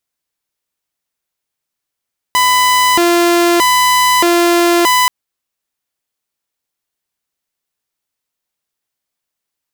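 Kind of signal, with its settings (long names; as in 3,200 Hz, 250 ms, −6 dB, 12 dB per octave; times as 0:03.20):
siren hi-lo 345–1,000 Hz 0.8 per second saw −6 dBFS 2.73 s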